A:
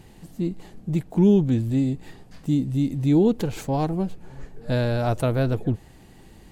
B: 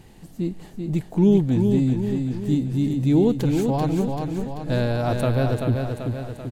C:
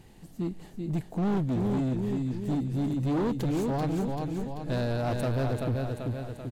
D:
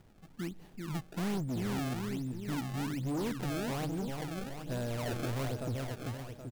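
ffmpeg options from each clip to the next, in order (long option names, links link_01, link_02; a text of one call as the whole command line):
ffmpeg -i in.wav -af "aecho=1:1:387|774|1161|1548|1935|2322|2709:0.562|0.304|0.164|0.0885|0.0478|0.0258|0.0139" out.wav
ffmpeg -i in.wav -af "volume=19.5dB,asoftclip=hard,volume=-19.5dB,volume=-5dB" out.wav
ffmpeg -i in.wav -af "acrusher=samples=26:mix=1:aa=0.000001:lfo=1:lforange=41.6:lforate=1.2,volume=-7dB" out.wav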